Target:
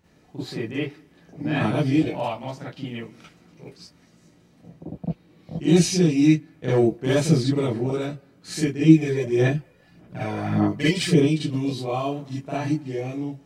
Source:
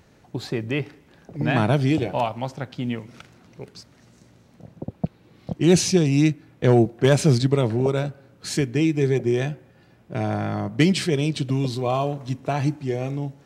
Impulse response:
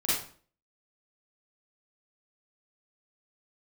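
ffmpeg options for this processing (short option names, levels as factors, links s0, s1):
-filter_complex "[0:a]asplit=3[s0][s1][s2];[s0]afade=t=out:st=8.83:d=0.02[s3];[s1]aphaser=in_gain=1:out_gain=1:delay=2.1:decay=0.67:speed=1.7:type=sinusoidal,afade=t=in:st=8.83:d=0.02,afade=t=out:st=11.2:d=0.02[s4];[s2]afade=t=in:st=11.2:d=0.02[s5];[s3][s4][s5]amix=inputs=3:normalize=0[s6];[1:a]atrim=start_sample=2205,atrim=end_sample=3528[s7];[s6][s7]afir=irnorm=-1:irlink=0,volume=0.299"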